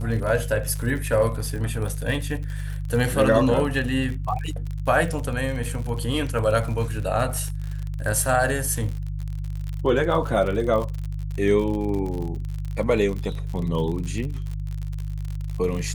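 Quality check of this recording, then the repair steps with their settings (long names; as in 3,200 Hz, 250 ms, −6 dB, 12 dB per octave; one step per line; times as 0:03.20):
surface crackle 55 per second −29 dBFS
mains hum 50 Hz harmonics 3 −29 dBFS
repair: click removal
hum removal 50 Hz, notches 3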